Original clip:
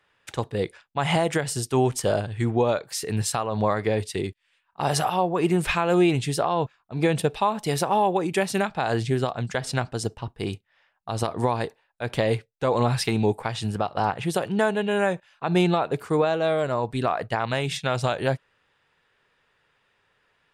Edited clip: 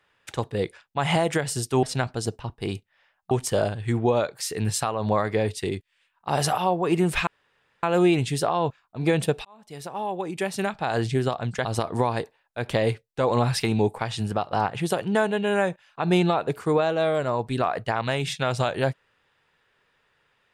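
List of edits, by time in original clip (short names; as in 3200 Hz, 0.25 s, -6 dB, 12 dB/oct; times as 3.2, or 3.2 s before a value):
5.79 insert room tone 0.56 s
7.41–9.01 fade in
9.61–11.09 move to 1.83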